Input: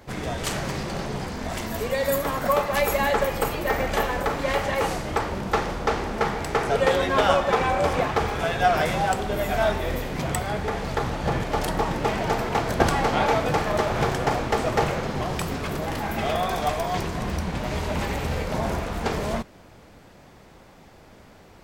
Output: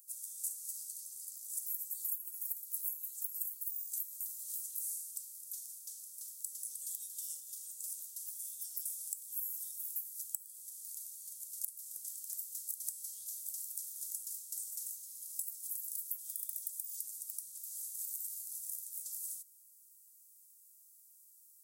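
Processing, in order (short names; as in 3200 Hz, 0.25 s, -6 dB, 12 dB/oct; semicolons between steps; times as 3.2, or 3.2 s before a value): inverse Chebyshev high-pass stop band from 2400 Hz, stop band 70 dB; compressor 16:1, threshold -46 dBFS, peak gain reduction 20 dB; gain +11 dB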